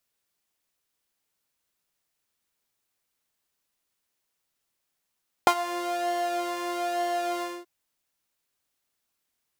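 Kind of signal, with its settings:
subtractive patch with pulse-width modulation F4, sub −18.5 dB, filter highpass, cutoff 450 Hz, Q 5.5, filter envelope 1 octave, filter sustain 35%, attack 1.1 ms, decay 0.07 s, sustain −15 dB, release 0.23 s, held 1.95 s, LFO 1.1 Hz, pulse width 37%, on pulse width 9%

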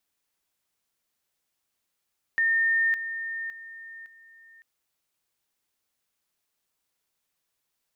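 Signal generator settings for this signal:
level staircase 1,820 Hz −20 dBFS, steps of −10 dB, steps 4, 0.56 s 0.00 s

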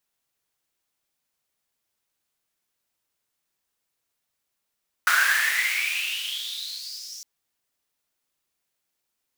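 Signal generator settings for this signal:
filter sweep on noise pink, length 2.16 s highpass, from 1,400 Hz, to 5,800 Hz, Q 9.5, exponential, gain ramp −20 dB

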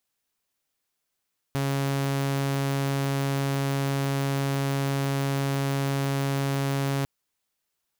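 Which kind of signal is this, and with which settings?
tone saw 138 Hz −21.5 dBFS 5.50 s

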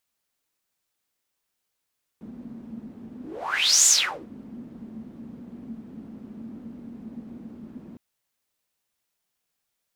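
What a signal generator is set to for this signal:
pass-by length 5.76 s, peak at 0:01.66, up 0.72 s, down 0.43 s, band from 230 Hz, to 7,100 Hz, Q 8.4, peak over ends 24 dB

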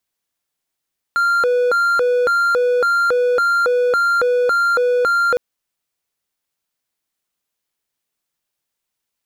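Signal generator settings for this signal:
siren hi-lo 492–1,390 Hz 1.8 per second triangle −11 dBFS 4.21 s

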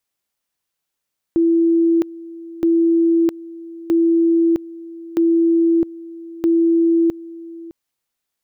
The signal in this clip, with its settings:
tone at two levels in turn 333 Hz −11.5 dBFS, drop 19.5 dB, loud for 0.66 s, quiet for 0.61 s, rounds 5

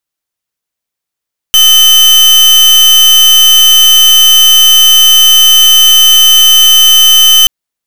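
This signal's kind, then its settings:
pulse wave 3,060 Hz, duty 38% −3.5 dBFS 5.93 s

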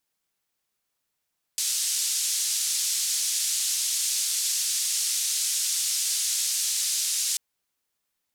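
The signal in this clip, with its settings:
band-limited noise 5,300–7,900 Hz, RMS −26.5 dBFS 5.79 s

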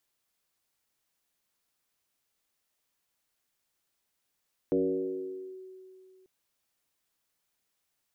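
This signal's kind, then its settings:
two-operator FM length 1.54 s, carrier 375 Hz, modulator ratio 0.26, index 1.4, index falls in 0.87 s linear, decay 2.56 s, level −22 dB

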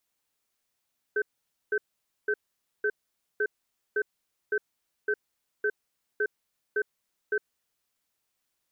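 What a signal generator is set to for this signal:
tone pair in a cadence 420 Hz, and 1,540 Hz, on 0.06 s, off 0.50 s, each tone −26 dBFS 6.31 s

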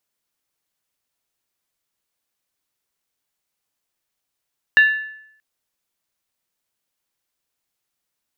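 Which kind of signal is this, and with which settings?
struck skin, lowest mode 1,740 Hz, decay 0.73 s, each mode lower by 11.5 dB, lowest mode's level −6.5 dB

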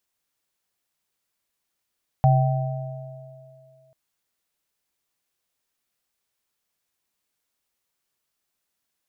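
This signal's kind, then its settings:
inharmonic partials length 1.69 s, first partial 134 Hz, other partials 646/770 Hz, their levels −11/−5.5 dB, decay 2.10 s, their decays 3.10/1.45 s, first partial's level −13 dB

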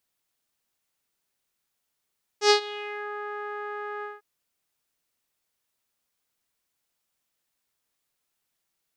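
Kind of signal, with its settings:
subtractive voice saw G#4 12 dB per octave, low-pass 1,500 Hz, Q 3.5, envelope 2 octaves, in 0.67 s, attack 91 ms, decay 0.10 s, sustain −20 dB, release 0.18 s, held 1.62 s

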